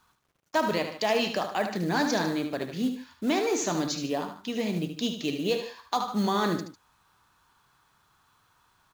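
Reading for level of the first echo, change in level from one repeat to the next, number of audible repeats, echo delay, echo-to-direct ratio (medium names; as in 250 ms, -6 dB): -8.5 dB, -7.0 dB, 2, 75 ms, -7.5 dB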